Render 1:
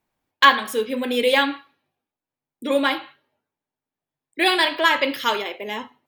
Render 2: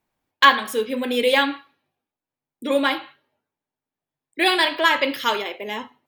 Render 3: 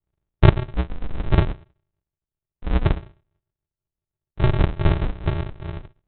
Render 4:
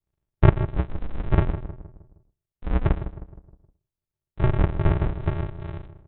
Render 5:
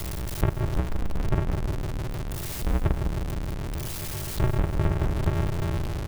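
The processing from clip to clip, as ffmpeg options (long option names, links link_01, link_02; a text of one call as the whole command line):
ffmpeg -i in.wav -af anull out.wav
ffmpeg -i in.wav -af "aresample=8000,acrusher=samples=32:mix=1:aa=0.000001,aresample=44100,lowpass=frequency=2700:poles=1,volume=1dB" out.wav
ffmpeg -i in.wav -filter_complex "[0:a]acrossover=split=2600[link_01][link_02];[link_02]acompressor=threshold=-55dB:ratio=4:attack=1:release=60[link_03];[link_01][link_03]amix=inputs=2:normalize=0,asplit=2[link_04][link_05];[link_05]adelay=156,lowpass=frequency=1400:poles=1,volume=-11dB,asplit=2[link_06][link_07];[link_07]adelay=156,lowpass=frequency=1400:poles=1,volume=0.46,asplit=2[link_08][link_09];[link_09]adelay=156,lowpass=frequency=1400:poles=1,volume=0.46,asplit=2[link_10][link_11];[link_11]adelay=156,lowpass=frequency=1400:poles=1,volume=0.46,asplit=2[link_12][link_13];[link_13]adelay=156,lowpass=frequency=1400:poles=1,volume=0.46[link_14];[link_06][link_08][link_10][link_12][link_14]amix=inputs=5:normalize=0[link_15];[link_04][link_15]amix=inputs=2:normalize=0,volume=-2.5dB" out.wav
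ffmpeg -i in.wav -filter_complex "[0:a]aeval=exprs='val(0)+0.5*0.0596*sgn(val(0))':channel_layout=same,acompressor=threshold=-20dB:ratio=6,asplit=6[link_01][link_02][link_03][link_04][link_05][link_06];[link_02]adelay=194,afreqshift=-99,volume=-15dB[link_07];[link_03]adelay=388,afreqshift=-198,volume=-20.8dB[link_08];[link_04]adelay=582,afreqshift=-297,volume=-26.7dB[link_09];[link_05]adelay=776,afreqshift=-396,volume=-32.5dB[link_10];[link_06]adelay=970,afreqshift=-495,volume=-38.4dB[link_11];[link_01][link_07][link_08][link_09][link_10][link_11]amix=inputs=6:normalize=0" out.wav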